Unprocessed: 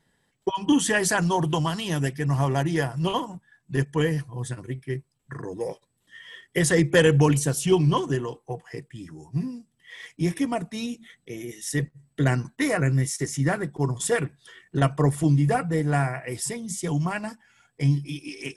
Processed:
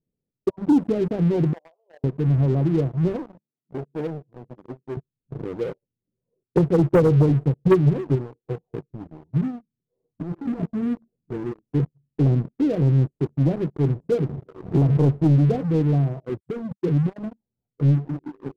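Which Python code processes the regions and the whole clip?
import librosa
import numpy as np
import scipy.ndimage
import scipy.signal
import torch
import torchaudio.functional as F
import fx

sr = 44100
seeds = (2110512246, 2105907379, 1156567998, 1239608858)

y = fx.chain(x, sr, fx.ellip_highpass(hz=580.0, order=4, stop_db=60),
    fx.band_squash(depth_pct=40), at=(1.53, 2.04))
y = fx.chain(y, sr, fx.highpass(hz=230.0, slope=12),
    fx.transformer_sat(knee_hz=1800.0), at=(3.16, 4.97))
y = fx.chain(y, sr, fx.transient(attack_db=9, sustain_db=4),
    fx.peak_eq(hz=120.0, db=5.5, octaves=0.33),
    fx.upward_expand(threshold_db=-34.0, expansion=1.5), at=(6.43, 8.45))
y = fx.chain(y, sr, fx.air_absorb(metres=370.0),
    fx.over_compress(threshold_db=-30.0, ratio=-1.0),
    fx.dispersion(late='highs', ms=85.0, hz=660.0), at=(10.14, 11.59))
y = fx.chain(y, sr, fx.highpass(hz=53.0, slope=6),
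    fx.pre_swell(db_per_s=34.0), at=(14.14, 15.08))
y = fx.chain(y, sr, fx.envelope_sharpen(power=3.0),
    fx.highpass(hz=78.0, slope=12),
    fx.transient(attack_db=3, sustain_db=-1), at=(16.29, 17.23))
y = scipy.signal.sosfilt(scipy.signal.cheby2(4, 60, 1700.0, 'lowpass', fs=sr, output='sos'), y)
y = fx.leveller(y, sr, passes=3)
y = y * librosa.db_to_amplitude(-6.0)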